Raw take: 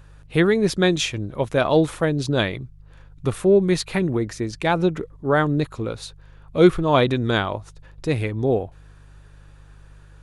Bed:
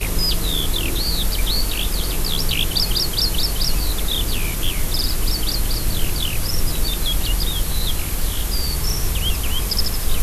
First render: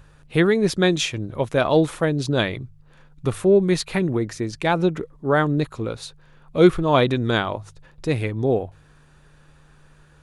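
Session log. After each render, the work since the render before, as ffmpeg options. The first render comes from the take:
-af "bandreject=f=50:t=h:w=4,bandreject=f=100:t=h:w=4"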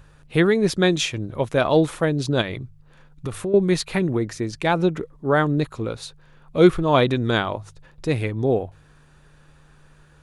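-filter_complex "[0:a]asettb=1/sr,asplit=3[a][b][c];[a]atrim=end=2.414[d];[b]atrim=start=2.41:end=3.54,asetpts=PTS-STARTPTS,afade=t=in:d=0.004:c=qsin,afade=t=out:st=1.126:d=0.004:c=qsin,acompressor=threshold=-23dB:ratio=6:attack=3.2:release=140:knee=1:detection=peak[e];[c]atrim=start=3.536[f];[d][e]acrossfade=d=0.004:c1=hsin:c2=qsin[g];[g][f]acrossfade=d=0.004:c1=qsin:c2=hsin"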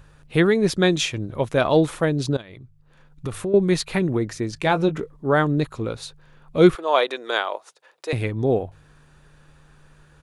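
-filter_complex "[0:a]asplit=3[a][b][c];[a]afade=t=out:st=4.56:d=0.02[d];[b]asplit=2[e][f];[f]adelay=20,volume=-10dB[g];[e][g]amix=inputs=2:normalize=0,afade=t=in:st=4.56:d=0.02,afade=t=out:st=5.15:d=0.02[h];[c]afade=t=in:st=5.15:d=0.02[i];[d][h][i]amix=inputs=3:normalize=0,asettb=1/sr,asplit=3[j][k][l];[j]atrim=end=6.754[m];[k]atrim=start=6.75:end=8.13,asetpts=PTS-STARTPTS,afade=t=in:d=0.004:c=qsin,afade=t=out:st=1.376:d=0.004:c=qsin,highpass=f=450:w=0.5412,highpass=f=450:w=1.3066[n];[l]atrim=start=8.126[o];[m][n]acrossfade=d=0.004:c1=hsin:c2=qsin[p];[p][o]acrossfade=d=0.004:c1=qsin:c2=hsin,asplit=2[q][r];[q]atrim=end=2.37,asetpts=PTS-STARTPTS,afade=t=out:st=2.366:d=0.004:c=hsin:silence=0.0794328[s];[r]atrim=start=2.37,asetpts=PTS-STARTPTS,afade=t=in:d=0.9:silence=0.0794328[t];[s][t]concat=n=2:v=0:a=1"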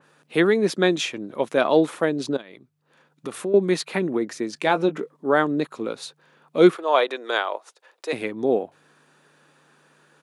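-af "highpass=f=210:w=0.5412,highpass=f=210:w=1.3066,adynamicequalizer=threshold=0.0126:dfrequency=3000:dqfactor=0.7:tfrequency=3000:tqfactor=0.7:attack=5:release=100:ratio=0.375:range=3:mode=cutabove:tftype=highshelf"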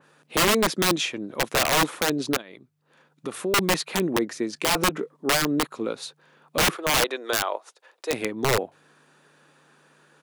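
-af "aeval=exprs='(mod(5.31*val(0)+1,2)-1)/5.31':c=same"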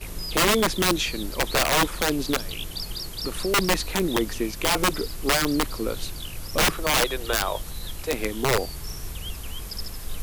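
-filter_complex "[1:a]volume=-13.5dB[a];[0:a][a]amix=inputs=2:normalize=0"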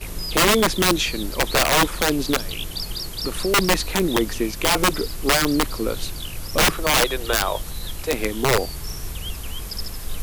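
-af "volume=3.5dB"

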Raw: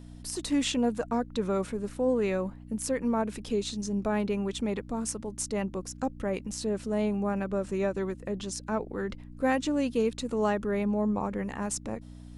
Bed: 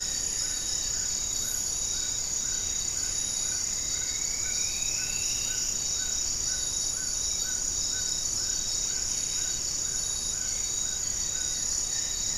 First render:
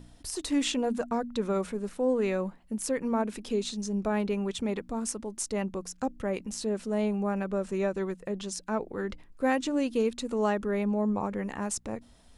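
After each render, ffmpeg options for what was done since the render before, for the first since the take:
-af "bandreject=f=60:t=h:w=4,bandreject=f=120:t=h:w=4,bandreject=f=180:t=h:w=4,bandreject=f=240:t=h:w=4,bandreject=f=300:t=h:w=4"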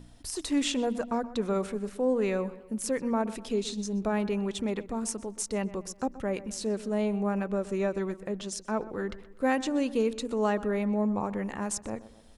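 -filter_complex "[0:a]asplit=2[a][b];[b]adelay=125,lowpass=f=3.1k:p=1,volume=-16dB,asplit=2[c][d];[d]adelay=125,lowpass=f=3.1k:p=1,volume=0.47,asplit=2[e][f];[f]adelay=125,lowpass=f=3.1k:p=1,volume=0.47,asplit=2[g][h];[h]adelay=125,lowpass=f=3.1k:p=1,volume=0.47[i];[a][c][e][g][i]amix=inputs=5:normalize=0"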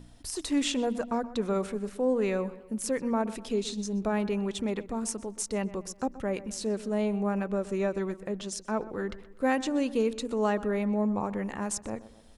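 -af anull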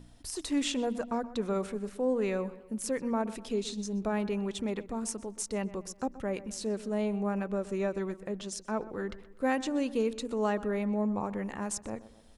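-af "volume=-2.5dB"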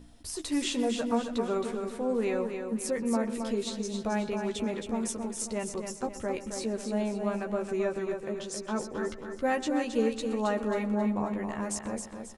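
-filter_complex "[0:a]asplit=2[a][b];[b]adelay=13,volume=-5.5dB[c];[a][c]amix=inputs=2:normalize=0,aecho=1:1:269|538|807|1076|1345:0.473|0.199|0.0835|0.0351|0.0147"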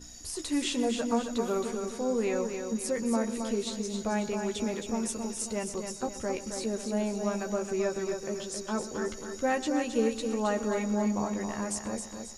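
-filter_complex "[1:a]volume=-18.5dB[a];[0:a][a]amix=inputs=2:normalize=0"

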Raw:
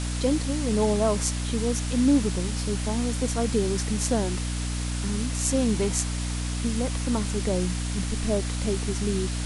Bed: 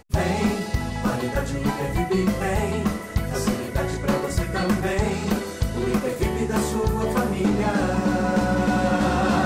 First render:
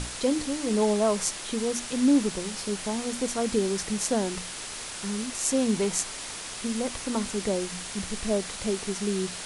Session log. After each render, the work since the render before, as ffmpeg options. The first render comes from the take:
-af "bandreject=f=60:t=h:w=6,bandreject=f=120:t=h:w=6,bandreject=f=180:t=h:w=6,bandreject=f=240:t=h:w=6,bandreject=f=300:t=h:w=6"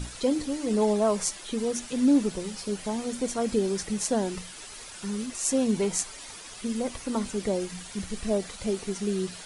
-af "afftdn=nr=10:nf=-38"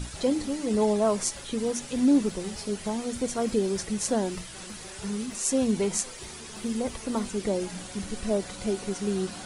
-filter_complex "[1:a]volume=-23dB[a];[0:a][a]amix=inputs=2:normalize=0"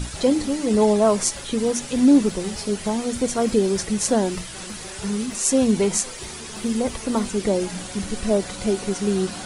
-af "volume=6.5dB,alimiter=limit=-3dB:level=0:latency=1"

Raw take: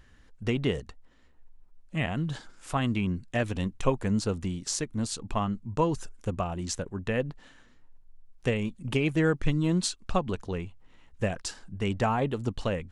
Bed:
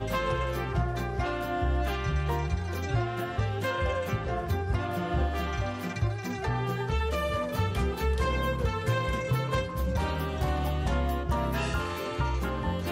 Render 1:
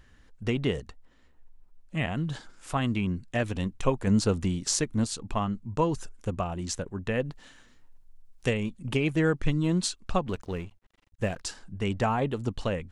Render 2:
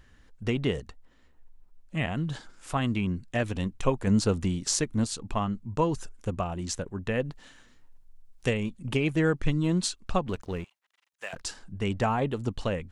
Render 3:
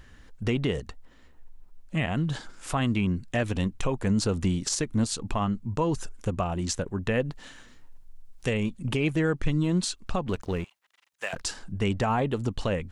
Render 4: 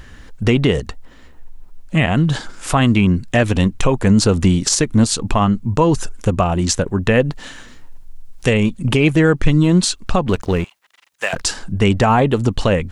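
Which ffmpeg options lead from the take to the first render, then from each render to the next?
-filter_complex "[0:a]asettb=1/sr,asplit=3[a][b][c];[a]atrim=end=7.244[d];[b]atrim=start=7.24:end=8.53,asetpts=PTS-STARTPTS,afade=t=in:d=0.004:c=qsin,afade=t=out:st=1.286:d=0.004:c=qsin,highshelf=f=3.4k:g=8[e];[c]atrim=start=8.526[f];[d][e]acrossfade=d=0.004:c1=hsin:c2=qsin[g];[g][f]acrossfade=d=0.004:c1=qsin:c2=hsin,asettb=1/sr,asplit=3[h][i][j];[h]atrim=end=10.264[k];[i]atrim=start=10.26:end=11.41,asetpts=PTS-STARTPTS,afade=t=in:d=0.004:c=qsin,afade=t=out:st=1.146:d=0.004:c=qsin,aeval=exprs='sgn(val(0))*max(abs(val(0))-0.00299,0)':c=same[l];[j]atrim=start=11.406[m];[k][l]acrossfade=d=0.004:c1=hsin:c2=qsin[n];[n][m]acrossfade=d=0.004:c1=qsin:c2=hsin,asplit=3[o][p][q];[o]atrim=end=4.072[r];[p]atrim=start=4.068:end=5.042,asetpts=PTS-STARTPTS,volume=4dB[s];[q]atrim=start=5.038[t];[r][s]acrossfade=d=0.004:c1=hsin:c2=hsin[u];[u][t]acrossfade=d=0.004:c1=hsin:c2=hsin"
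-filter_complex "[0:a]asettb=1/sr,asplit=3[a][b][c];[a]atrim=end=10.644[d];[b]atrim=start=10.64:end=11.33,asetpts=PTS-STARTPTS,afade=t=in:d=0.004:c=qsin,afade=t=out:st=0.686:d=0.004:c=qsin,highpass=1.1k[e];[c]atrim=start=11.326[f];[d][e]acrossfade=d=0.004:c1=hsin:c2=qsin[g];[g][f]acrossfade=d=0.004:c1=qsin:c2=hsin"
-filter_complex "[0:a]asplit=2[a][b];[b]acompressor=threshold=-34dB:ratio=6,volume=0dB[c];[a][c]amix=inputs=2:normalize=0,alimiter=limit=-16.5dB:level=0:latency=1:release=57"
-af "volume=12dB"

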